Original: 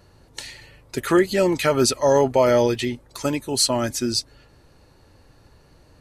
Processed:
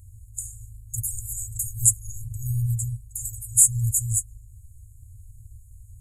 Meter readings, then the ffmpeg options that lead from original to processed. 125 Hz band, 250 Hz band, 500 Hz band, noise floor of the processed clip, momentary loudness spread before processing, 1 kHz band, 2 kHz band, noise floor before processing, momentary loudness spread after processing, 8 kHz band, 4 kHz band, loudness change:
+4.0 dB, below −20 dB, below −40 dB, −48 dBFS, 19 LU, below −40 dB, below −40 dB, −55 dBFS, 18 LU, +7.0 dB, below −40 dB, −3.0 dB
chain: -af "apsyclip=11.5dB,afftfilt=real='re*(1-between(b*sr/4096,120,6600))':imag='im*(1-between(b*sr/4096,120,6600))':win_size=4096:overlap=0.75,volume=-1.5dB"

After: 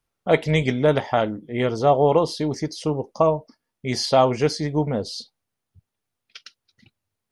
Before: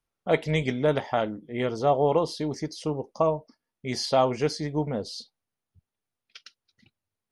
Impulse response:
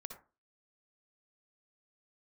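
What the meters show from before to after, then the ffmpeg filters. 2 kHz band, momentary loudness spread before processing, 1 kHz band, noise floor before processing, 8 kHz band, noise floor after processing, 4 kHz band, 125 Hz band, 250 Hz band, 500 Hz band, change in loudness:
+5.0 dB, 10 LU, +5.0 dB, below −85 dBFS, +5.0 dB, −83 dBFS, +5.0 dB, +6.0 dB, +5.0 dB, +5.0 dB, +5.0 dB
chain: -af "equalizer=frequency=110:width=2.7:gain=3,volume=5dB"

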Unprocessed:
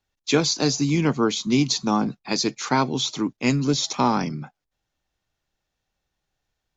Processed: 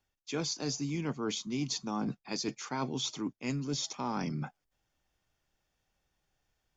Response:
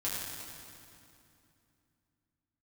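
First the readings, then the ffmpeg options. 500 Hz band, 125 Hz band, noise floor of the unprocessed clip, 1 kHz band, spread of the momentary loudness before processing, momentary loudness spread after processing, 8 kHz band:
−14.0 dB, −12.0 dB, −81 dBFS, −14.5 dB, 4 LU, 3 LU, can't be measured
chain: -af "bandreject=frequency=4000:width=8.6,areverse,acompressor=threshold=-33dB:ratio=5,areverse"

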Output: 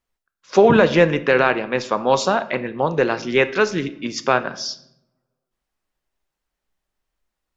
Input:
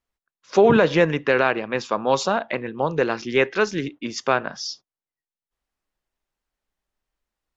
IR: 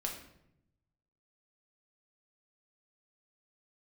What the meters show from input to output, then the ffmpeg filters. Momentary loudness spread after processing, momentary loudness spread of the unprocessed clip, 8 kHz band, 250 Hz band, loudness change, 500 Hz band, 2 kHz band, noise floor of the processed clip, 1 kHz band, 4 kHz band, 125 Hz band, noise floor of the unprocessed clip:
12 LU, 13 LU, can't be measured, +2.5 dB, +2.5 dB, +2.5 dB, +3.0 dB, −83 dBFS, +3.0 dB, +2.5 dB, +3.0 dB, below −85 dBFS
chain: -filter_complex "[0:a]asplit=2[link_01][link_02];[1:a]atrim=start_sample=2205[link_03];[link_02][link_03]afir=irnorm=-1:irlink=0,volume=-7.5dB[link_04];[link_01][link_04]amix=inputs=2:normalize=0"

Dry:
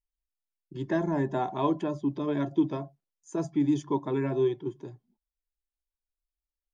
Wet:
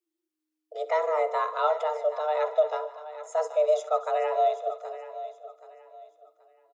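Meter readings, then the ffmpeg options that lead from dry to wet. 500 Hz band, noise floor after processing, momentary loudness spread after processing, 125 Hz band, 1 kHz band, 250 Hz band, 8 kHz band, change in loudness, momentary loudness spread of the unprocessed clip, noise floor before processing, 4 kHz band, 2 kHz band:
+6.5 dB, −85 dBFS, 15 LU, below −40 dB, +8.0 dB, below −35 dB, can't be measured, +2.0 dB, 13 LU, below −85 dBFS, +3.5 dB, +4.0 dB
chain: -filter_complex "[0:a]asplit=2[link_01][link_02];[link_02]aecho=0:1:65|151|247:0.141|0.126|0.106[link_03];[link_01][link_03]amix=inputs=2:normalize=0,afreqshift=310,asplit=2[link_04][link_05];[link_05]aecho=0:1:777|1554|2331:0.2|0.0599|0.018[link_06];[link_04][link_06]amix=inputs=2:normalize=0,volume=2dB"

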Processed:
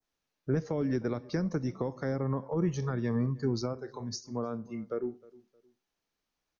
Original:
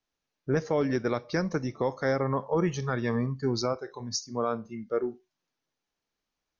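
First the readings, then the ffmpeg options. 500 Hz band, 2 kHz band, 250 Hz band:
−5.5 dB, −9.5 dB, −1.5 dB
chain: -filter_complex "[0:a]acrossover=split=340[link_01][link_02];[link_02]acompressor=threshold=-36dB:ratio=6[link_03];[link_01][link_03]amix=inputs=2:normalize=0,adynamicequalizer=threshold=0.00126:dfrequency=3000:dqfactor=1:tfrequency=3000:tqfactor=1:attack=5:release=100:ratio=0.375:range=2.5:mode=cutabove:tftype=bell,asplit=2[link_04][link_05];[link_05]adelay=310,lowpass=frequency=1400:poles=1,volume=-21.5dB,asplit=2[link_06][link_07];[link_07]adelay=310,lowpass=frequency=1400:poles=1,volume=0.31[link_08];[link_04][link_06][link_08]amix=inputs=3:normalize=0"

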